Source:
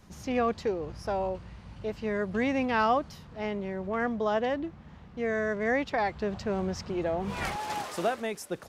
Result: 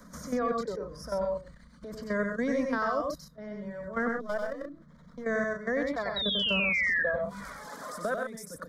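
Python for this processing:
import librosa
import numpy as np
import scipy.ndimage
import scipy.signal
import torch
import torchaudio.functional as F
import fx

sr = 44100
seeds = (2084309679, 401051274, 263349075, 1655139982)

y = fx.halfwave_gain(x, sr, db=-7.0, at=(4.08, 5.24))
y = fx.dereverb_blind(y, sr, rt60_s=1.5)
y = fx.transient(y, sr, attack_db=-8, sustain_db=4)
y = fx.level_steps(y, sr, step_db=16)
y = fx.fixed_phaser(y, sr, hz=540.0, stages=8)
y = fx.spec_paint(y, sr, seeds[0], shape='fall', start_s=6.16, length_s=0.87, low_hz=1600.0, high_hz=3900.0, level_db=-33.0)
y = fx.echo_multitap(y, sr, ms=(93, 128), db=(-4.0, -7.0))
y = fx.band_squash(y, sr, depth_pct=40)
y = y * librosa.db_to_amplitude(5.0)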